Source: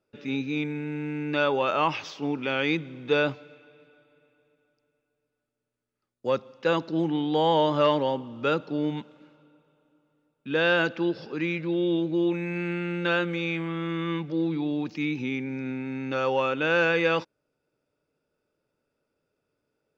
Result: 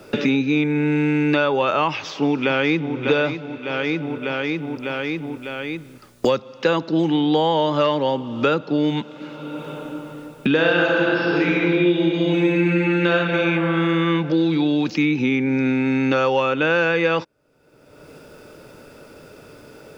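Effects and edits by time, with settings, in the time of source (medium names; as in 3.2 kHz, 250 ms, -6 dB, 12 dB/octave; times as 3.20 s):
1.89–2.97 s: echo throw 600 ms, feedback 45%, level -9.5 dB
10.51–13.13 s: reverb throw, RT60 2.8 s, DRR -3.5 dB
whole clip: three bands compressed up and down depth 100%; trim +5 dB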